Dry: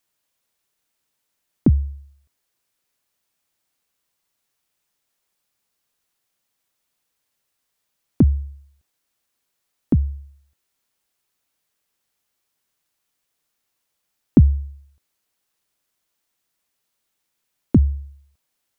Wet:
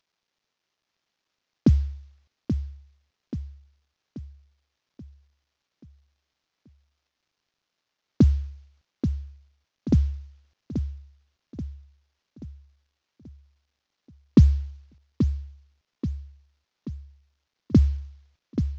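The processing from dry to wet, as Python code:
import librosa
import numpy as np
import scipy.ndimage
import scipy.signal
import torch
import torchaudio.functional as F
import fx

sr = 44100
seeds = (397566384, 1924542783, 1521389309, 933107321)

y = fx.cvsd(x, sr, bps=32000)
y = fx.echo_feedback(y, sr, ms=832, feedback_pct=49, wet_db=-8.5)
y = y * 10.0 ** (-2.0 / 20.0)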